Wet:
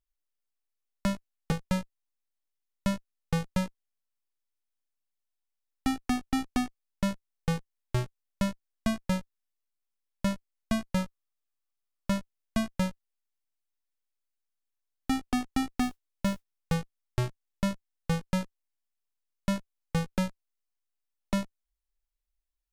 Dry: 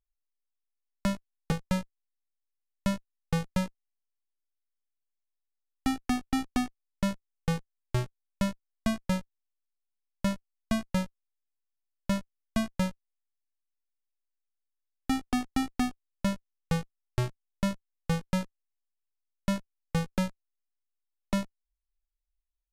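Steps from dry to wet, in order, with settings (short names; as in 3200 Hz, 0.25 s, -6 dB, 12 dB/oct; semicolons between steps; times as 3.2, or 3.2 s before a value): 10.99–12.13 bell 1200 Hz +7 dB 0.21 oct; 15.74–16.74 modulation noise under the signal 29 dB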